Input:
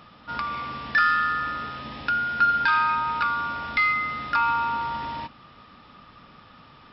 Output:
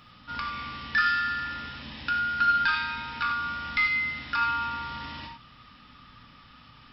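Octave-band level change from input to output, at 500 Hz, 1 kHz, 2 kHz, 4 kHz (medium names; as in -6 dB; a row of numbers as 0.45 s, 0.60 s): -9.0 dB, -5.5 dB, -2.0 dB, +1.5 dB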